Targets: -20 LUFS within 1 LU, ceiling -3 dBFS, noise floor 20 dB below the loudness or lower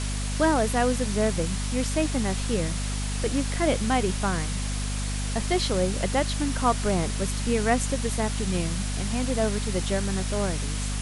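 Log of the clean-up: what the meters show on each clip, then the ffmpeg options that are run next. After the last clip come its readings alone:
hum 50 Hz; harmonics up to 250 Hz; hum level -27 dBFS; noise floor -29 dBFS; noise floor target -47 dBFS; loudness -26.5 LUFS; peak -9.0 dBFS; loudness target -20.0 LUFS
-> -af "bandreject=f=50:t=h:w=4,bandreject=f=100:t=h:w=4,bandreject=f=150:t=h:w=4,bandreject=f=200:t=h:w=4,bandreject=f=250:t=h:w=4"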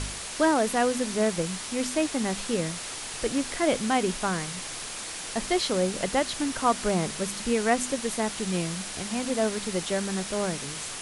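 hum none; noise floor -37 dBFS; noise floor target -48 dBFS
-> -af "afftdn=nr=11:nf=-37"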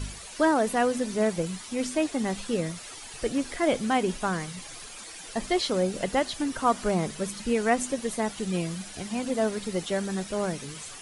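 noise floor -43 dBFS; noise floor target -48 dBFS
-> -af "afftdn=nr=6:nf=-43"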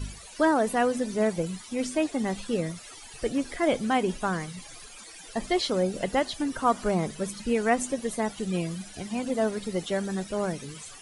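noise floor -46 dBFS; noise floor target -48 dBFS
-> -af "afftdn=nr=6:nf=-46"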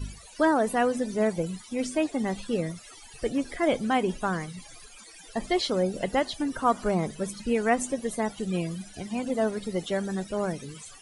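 noise floor -49 dBFS; loudness -28.5 LUFS; peak -10.0 dBFS; loudness target -20.0 LUFS
-> -af "volume=8.5dB,alimiter=limit=-3dB:level=0:latency=1"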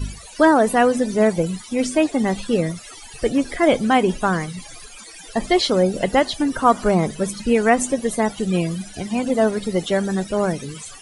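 loudness -20.0 LUFS; peak -3.0 dBFS; noise floor -40 dBFS

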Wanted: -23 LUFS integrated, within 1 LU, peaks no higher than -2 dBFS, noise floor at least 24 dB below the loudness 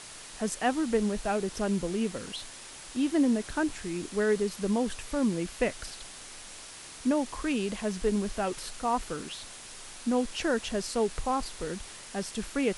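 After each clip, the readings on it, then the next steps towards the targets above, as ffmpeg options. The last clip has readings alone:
noise floor -46 dBFS; noise floor target -55 dBFS; loudness -30.5 LUFS; peak -14.0 dBFS; loudness target -23.0 LUFS
-> -af "afftdn=nr=9:nf=-46"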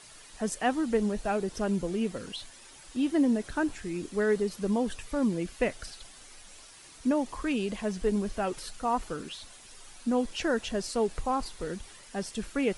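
noise floor -51 dBFS; noise floor target -55 dBFS
-> -af "afftdn=nr=6:nf=-51"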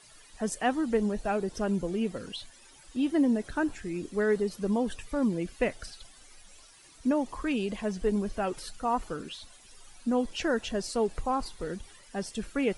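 noise floor -55 dBFS; loudness -31.0 LUFS; peak -14.5 dBFS; loudness target -23.0 LUFS
-> -af "volume=8dB"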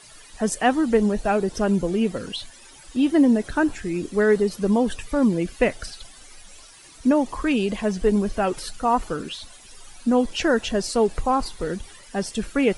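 loudness -23.0 LUFS; peak -6.5 dBFS; noise floor -47 dBFS

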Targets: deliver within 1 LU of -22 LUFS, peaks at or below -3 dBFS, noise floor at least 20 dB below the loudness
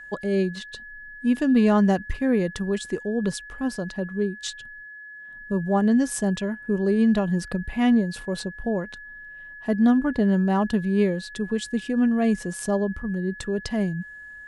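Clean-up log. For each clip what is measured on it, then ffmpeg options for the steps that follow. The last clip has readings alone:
steady tone 1700 Hz; tone level -39 dBFS; loudness -24.0 LUFS; peak -9.5 dBFS; loudness target -22.0 LUFS
-> -af "bandreject=f=1.7k:w=30"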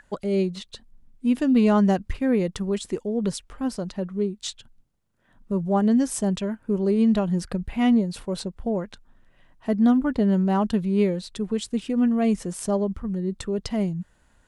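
steady tone none; loudness -24.0 LUFS; peak -9.5 dBFS; loudness target -22.0 LUFS
-> -af "volume=2dB"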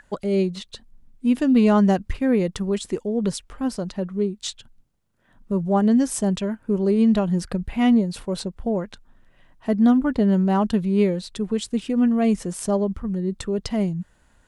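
loudness -22.0 LUFS; peak -7.5 dBFS; noise floor -60 dBFS

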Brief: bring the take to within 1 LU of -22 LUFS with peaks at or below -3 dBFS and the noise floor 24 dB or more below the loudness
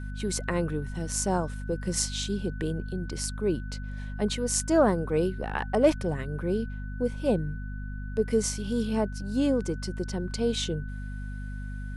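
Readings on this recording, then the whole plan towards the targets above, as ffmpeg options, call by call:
hum 50 Hz; harmonics up to 250 Hz; hum level -33 dBFS; steady tone 1500 Hz; tone level -47 dBFS; loudness -29.0 LUFS; peak -8.5 dBFS; loudness target -22.0 LUFS
-> -af "bandreject=f=50:t=h:w=6,bandreject=f=100:t=h:w=6,bandreject=f=150:t=h:w=6,bandreject=f=200:t=h:w=6,bandreject=f=250:t=h:w=6"
-af "bandreject=f=1.5k:w=30"
-af "volume=7dB,alimiter=limit=-3dB:level=0:latency=1"

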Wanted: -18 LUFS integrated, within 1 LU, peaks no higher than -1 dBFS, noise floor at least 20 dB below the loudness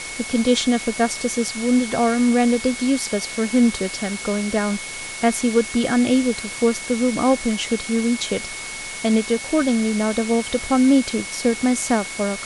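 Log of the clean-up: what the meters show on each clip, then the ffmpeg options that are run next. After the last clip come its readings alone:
steady tone 2200 Hz; tone level -33 dBFS; noise floor -32 dBFS; noise floor target -41 dBFS; loudness -20.5 LUFS; peak -5.0 dBFS; loudness target -18.0 LUFS
-> -af "bandreject=f=2.2k:w=30"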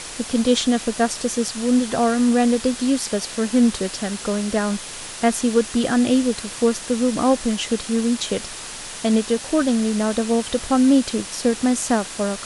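steady tone none; noise floor -34 dBFS; noise floor target -41 dBFS
-> -af "afftdn=nr=7:nf=-34"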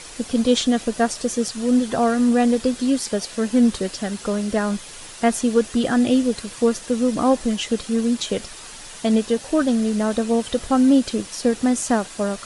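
noise floor -39 dBFS; noise floor target -41 dBFS
-> -af "afftdn=nr=6:nf=-39"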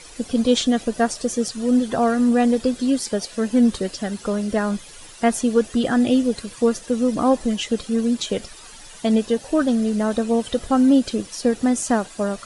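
noise floor -42 dBFS; loudness -21.0 LUFS; peak -5.5 dBFS; loudness target -18.0 LUFS
-> -af "volume=3dB"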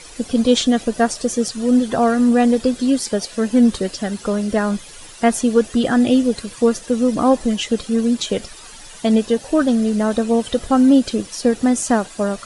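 loudness -18.0 LUFS; peak -2.5 dBFS; noise floor -39 dBFS

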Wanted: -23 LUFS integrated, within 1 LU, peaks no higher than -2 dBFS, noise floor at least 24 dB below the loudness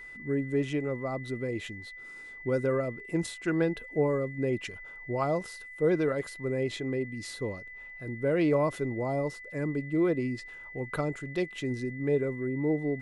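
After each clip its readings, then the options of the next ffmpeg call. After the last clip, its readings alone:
steady tone 2000 Hz; tone level -43 dBFS; loudness -31.0 LUFS; peak -15.0 dBFS; loudness target -23.0 LUFS
-> -af "bandreject=f=2k:w=30"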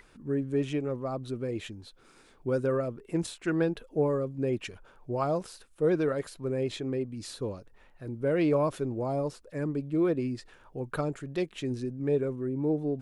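steady tone none; loudness -31.0 LUFS; peak -15.0 dBFS; loudness target -23.0 LUFS
-> -af "volume=8dB"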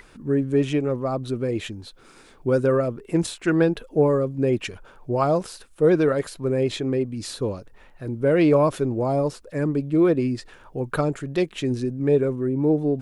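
loudness -23.0 LUFS; peak -7.0 dBFS; noise floor -51 dBFS

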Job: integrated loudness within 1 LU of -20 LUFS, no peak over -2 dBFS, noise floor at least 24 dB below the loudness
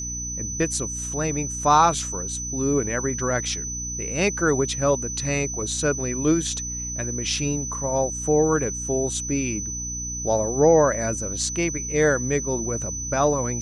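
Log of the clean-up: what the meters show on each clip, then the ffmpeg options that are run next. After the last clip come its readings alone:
hum 60 Hz; harmonics up to 300 Hz; hum level -33 dBFS; steady tone 6000 Hz; tone level -29 dBFS; loudness -23.0 LUFS; peak -4.5 dBFS; loudness target -20.0 LUFS
-> -af "bandreject=f=60:t=h:w=4,bandreject=f=120:t=h:w=4,bandreject=f=180:t=h:w=4,bandreject=f=240:t=h:w=4,bandreject=f=300:t=h:w=4"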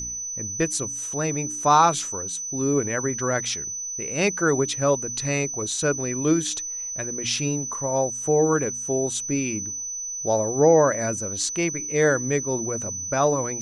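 hum none; steady tone 6000 Hz; tone level -29 dBFS
-> -af "bandreject=f=6k:w=30"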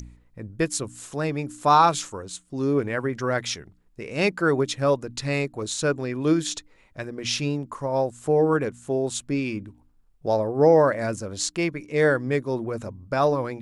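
steady tone none; loudness -24.5 LUFS; peak -5.0 dBFS; loudness target -20.0 LUFS
-> -af "volume=4.5dB,alimiter=limit=-2dB:level=0:latency=1"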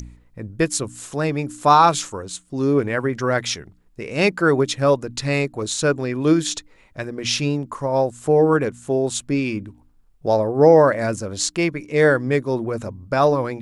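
loudness -20.0 LUFS; peak -2.0 dBFS; noise floor -55 dBFS

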